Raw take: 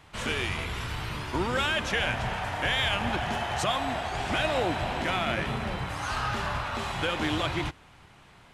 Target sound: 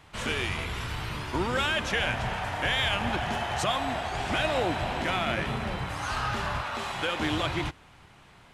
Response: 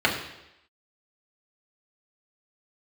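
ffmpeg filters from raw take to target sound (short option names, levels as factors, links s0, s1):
-filter_complex "[0:a]asettb=1/sr,asplit=3[s0][s1][s2];[s0]atrim=end=6.614[s3];[s1]atrim=start=6.61:end=7.2,asetpts=PTS-STARTPTS,afade=t=in:d=0.004:c=qsin,afade=t=out:st=0.586:d=0.004:c=qsin,lowshelf=f=170:g=-10[s4];[s2]atrim=start=7.196[s5];[s3][s4]acrossfade=d=0.004:c1=hsin:c2=qsin[s6];[s6][s5]acrossfade=d=0.004:c1=qsin:c2=hsin"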